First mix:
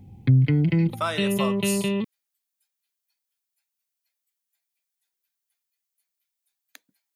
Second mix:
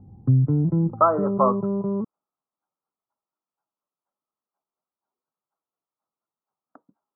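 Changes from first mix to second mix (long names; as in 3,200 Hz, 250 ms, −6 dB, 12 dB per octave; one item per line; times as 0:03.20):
speech +11.0 dB
master: add Chebyshev low-pass filter 1,300 Hz, order 6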